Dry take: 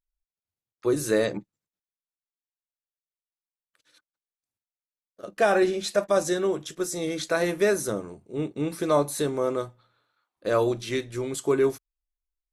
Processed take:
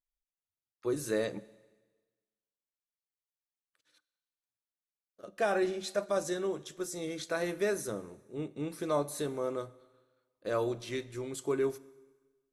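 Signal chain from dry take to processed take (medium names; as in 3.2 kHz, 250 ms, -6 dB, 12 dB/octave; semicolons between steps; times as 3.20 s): Schroeder reverb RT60 1.3 s, combs from 33 ms, DRR 19 dB; trim -8.5 dB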